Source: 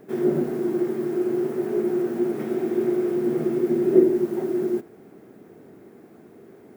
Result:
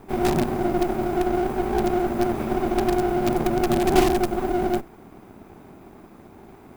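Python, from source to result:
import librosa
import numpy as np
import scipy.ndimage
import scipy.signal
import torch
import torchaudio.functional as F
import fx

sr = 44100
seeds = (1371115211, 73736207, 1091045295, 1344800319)

p1 = fx.lower_of_two(x, sr, delay_ms=0.81)
p2 = (np.mod(10.0 ** (16.5 / 20.0) * p1 + 1.0, 2.0) - 1.0) / 10.0 ** (16.5 / 20.0)
y = p1 + (p2 * librosa.db_to_amplitude(-5.0))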